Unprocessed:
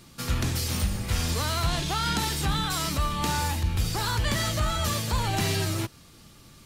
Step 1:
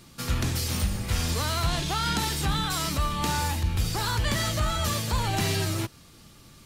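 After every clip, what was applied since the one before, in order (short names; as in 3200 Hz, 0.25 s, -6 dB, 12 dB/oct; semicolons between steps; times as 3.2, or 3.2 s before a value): nothing audible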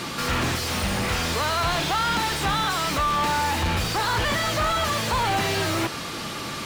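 overdrive pedal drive 37 dB, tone 1900 Hz, clips at -15 dBFS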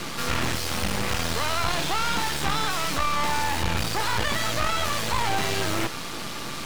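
half-wave rectifier; gain +2.5 dB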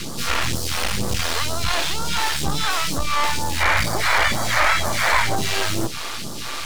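painted sound noise, 3.6–5.36, 530–2400 Hz -25 dBFS; phaser stages 2, 2.1 Hz, lowest notch 130–2300 Hz; gain +4.5 dB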